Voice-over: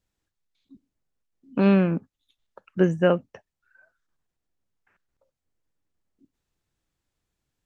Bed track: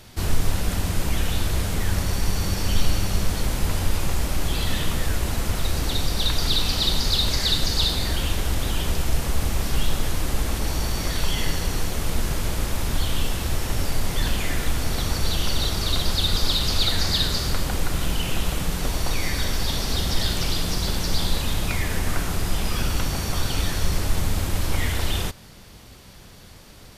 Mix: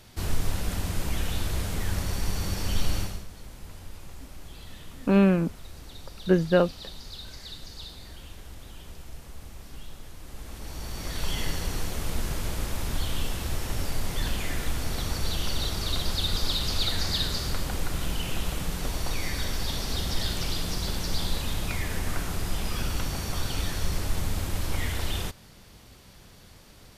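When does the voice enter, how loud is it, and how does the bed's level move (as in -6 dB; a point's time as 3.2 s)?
3.50 s, -1.0 dB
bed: 3.01 s -5.5 dB
3.27 s -20 dB
10.17 s -20 dB
11.31 s -5.5 dB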